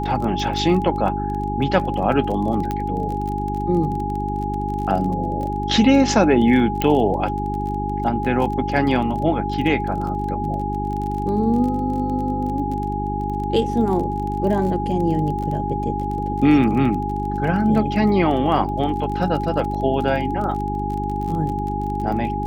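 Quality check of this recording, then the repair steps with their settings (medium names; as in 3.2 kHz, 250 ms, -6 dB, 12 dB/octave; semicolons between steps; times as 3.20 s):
crackle 24 per s -27 dBFS
hum 50 Hz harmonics 8 -26 dBFS
whine 830 Hz -25 dBFS
2.71 s: pop -12 dBFS
6.82 s: pop -6 dBFS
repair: de-click; de-hum 50 Hz, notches 8; band-stop 830 Hz, Q 30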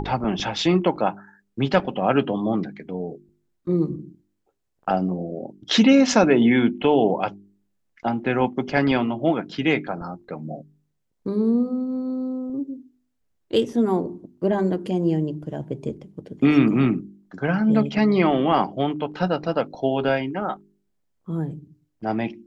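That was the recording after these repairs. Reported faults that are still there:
nothing left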